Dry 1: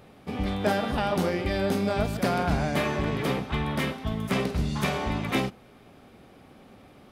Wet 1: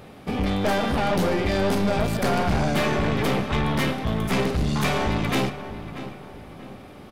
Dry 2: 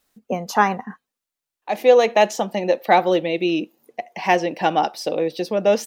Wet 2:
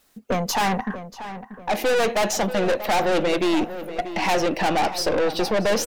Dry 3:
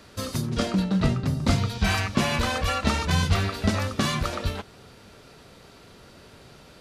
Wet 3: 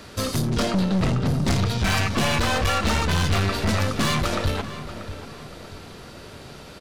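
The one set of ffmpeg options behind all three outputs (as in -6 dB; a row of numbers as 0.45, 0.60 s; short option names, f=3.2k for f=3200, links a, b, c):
-filter_complex "[0:a]aeval=exprs='(tanh(22.4*val(0)+0.35)-tanh(0.35))/22.4':c=same,asplit=2[a][b];[b]adelay=636,lowpass=f=2.6k:p=1,volume=-12dB,asplit=2[c][d];[d]adelay=636,lowpass=f=2.6k:p=1,volume=0.42,asplit=2[e][f];[f]adelay=636,lowpass=f=2.6k:p=1,volume=0.42,asplit=2[g][h];[h]adelay=636,lowpass=f=2.6k:p=1,volume=0.42[i];[c][e][g][i]amix=inputs=4:normalize=0[j];[a][j]amix=inputs=2:normalize=0,volume=8.5dB"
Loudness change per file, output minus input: +4.0, -3.0, +2.5 LU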